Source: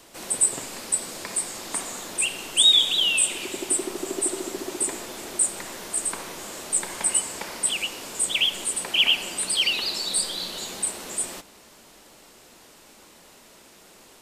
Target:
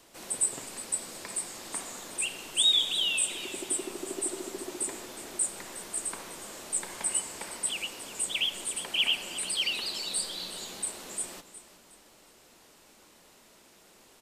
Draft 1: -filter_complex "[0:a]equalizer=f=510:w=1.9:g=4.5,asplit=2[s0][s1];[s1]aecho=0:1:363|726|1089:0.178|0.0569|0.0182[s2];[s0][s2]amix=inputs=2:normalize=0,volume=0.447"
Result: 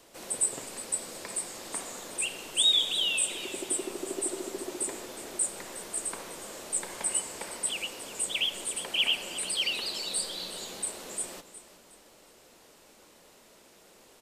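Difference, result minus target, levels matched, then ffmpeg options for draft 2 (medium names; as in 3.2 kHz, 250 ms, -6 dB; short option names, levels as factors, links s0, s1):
500 Hz band +2.5 dB
-filter_complex "[0:a]asplit=2[s0][s1];[s1]aecho=0:1:363|726|1089:0.178|0.0569|0.0182[s2];[s0][s2]amix=inputs=2:normalize=0,volume=0.447"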